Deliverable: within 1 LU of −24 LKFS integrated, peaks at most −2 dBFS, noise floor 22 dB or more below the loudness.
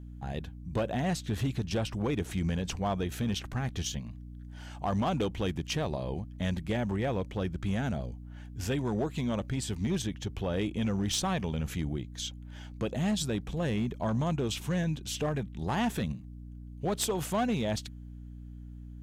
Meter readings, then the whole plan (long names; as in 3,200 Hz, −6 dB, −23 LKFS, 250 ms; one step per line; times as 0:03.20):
share of clipped samples 1.7%; peaks flattened at −23.5 dBFS; mains hum 60 Hz; hum harmonics up to 300 Hz; level of the hum −42 dBFS; integrated loudness −32.5 LKFS; sample peak −23.5 dBFS; target loudness −24.0 LKFS
→ clipped peaks rebuilt −23.5 dBFS
hum removal 60 Hz, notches 5
level +8.5 dB